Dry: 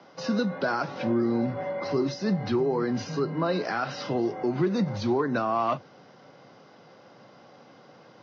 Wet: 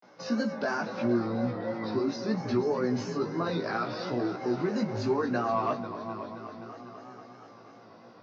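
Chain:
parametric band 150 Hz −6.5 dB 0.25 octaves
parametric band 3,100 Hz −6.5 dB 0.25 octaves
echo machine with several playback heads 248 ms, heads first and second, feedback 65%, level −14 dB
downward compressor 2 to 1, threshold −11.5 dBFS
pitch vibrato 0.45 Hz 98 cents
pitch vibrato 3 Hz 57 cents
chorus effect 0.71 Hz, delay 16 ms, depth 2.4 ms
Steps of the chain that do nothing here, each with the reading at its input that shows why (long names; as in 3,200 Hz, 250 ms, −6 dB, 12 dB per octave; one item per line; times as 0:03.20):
downward compressor, threshold −11.5 dBFS: peak of its input −13.5 dBFS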